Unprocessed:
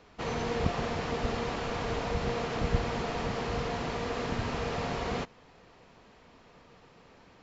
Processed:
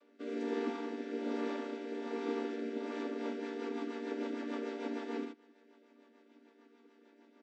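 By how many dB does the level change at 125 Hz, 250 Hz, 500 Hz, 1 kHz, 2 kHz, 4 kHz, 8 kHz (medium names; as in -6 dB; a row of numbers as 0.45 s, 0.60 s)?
under -25 dB, -1.0 dB, -5.0 dB, -11.5 dB, -10.0 dB, -13.0 dB, no reading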